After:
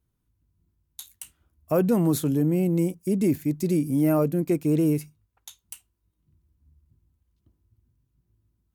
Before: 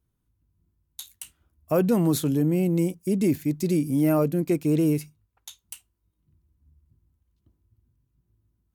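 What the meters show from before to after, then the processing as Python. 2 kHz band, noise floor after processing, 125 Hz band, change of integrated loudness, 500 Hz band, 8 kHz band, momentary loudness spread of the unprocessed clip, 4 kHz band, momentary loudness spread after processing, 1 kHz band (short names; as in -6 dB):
-2.0 dB, -76 dBFS, 0.0 dB, 0.0 dB, 0.0 dB, -1.0 dB, 18 LU, n/a, 5 LU, -0.5 dB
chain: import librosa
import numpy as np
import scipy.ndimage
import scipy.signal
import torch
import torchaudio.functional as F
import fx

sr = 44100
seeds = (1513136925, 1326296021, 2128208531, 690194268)

y = fx.dynamic_eq(x, sr, hz=3800.0, q=0.77, threshold_db=-48.0, ratio=4.0, max_db=-4)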